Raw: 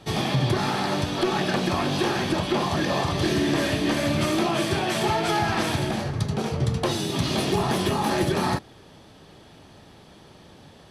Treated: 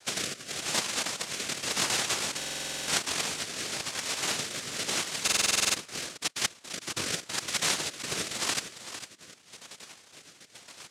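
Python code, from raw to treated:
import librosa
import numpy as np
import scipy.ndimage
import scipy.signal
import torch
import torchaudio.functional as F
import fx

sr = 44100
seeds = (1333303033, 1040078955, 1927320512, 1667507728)

y = fx.spec_dropout(x, sr, seeds[0], share_pct=67)
y = fx.lowpass(y, sr, hz=1100.0, slope=12, at=(5.45, 7.8))
y = fx.over_compress(y, sr, threshold_db=-30.0, ratio=-0.5)
y = fx.noise_vocoder(y, sr, seeds[1], bands=1)
y = fx.rotary(y, sr, hz=0.9)
y = y + 10.0 ** (-11.5 / 20.0) * np.pad(y, (int(453 * sr / 1000.0), 0))[:len(y)]
y = fx.buffer_glitch(y, sr, at_s=(2.37, 5.23), block=2048, repeats=10)
y = y * 10.0 ** (2.5 / 20.0)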